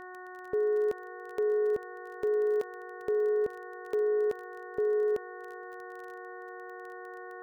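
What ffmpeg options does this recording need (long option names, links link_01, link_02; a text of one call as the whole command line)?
ffmpeg -i in.wav -af "adeclick=threshold=4,bandreject=frequency=366.6:width_type=h:width=4,bandreject=frequency=733.2:width_type=h:width=4,bandreject=frequency=1099.8:width_type=h:width=4,bandreject=frequency=1466.4:width_type=h:width=4,bandreject=frequency=1833:width_type=h:width=4,bandreject=frequency=470:width=30" out.wav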